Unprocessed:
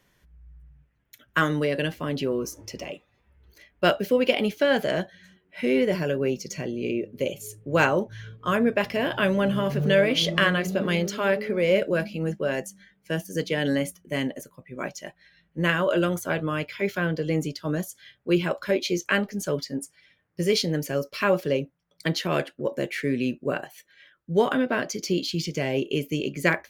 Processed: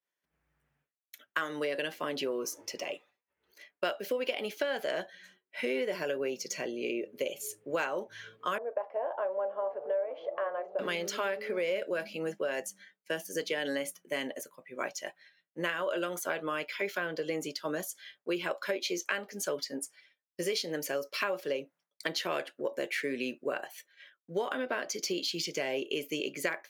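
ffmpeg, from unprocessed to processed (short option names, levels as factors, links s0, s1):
-filter_complex "[0:a]asettb=1/sr,asplit=3[s0][s1][s2];[s0]atrim=end=8.584[s3];[s1]atrim=start=8.58:end=10.79,asetpts=PTS-STARTPTS,afade=t=in:d=0.004:c=qsin,afade=t=out:st=2.206:d=0.004:c=qsin,asuperpass=centerf=700:order=4:qfactor=1.5[s4];[s2]atrim=start=10.786[s5];[s3][s4]acrossfade=d=0.004:c1=hsin:c2=qsin[s6];[s6][s5]acrossfade=d=0.004:c1=qsin:c2=hsin,agate=range=0.0224:threshold=0.00282:ratio=3:detection=peak,highpass=430,acompressor=threshold=0.0355:ratio=6"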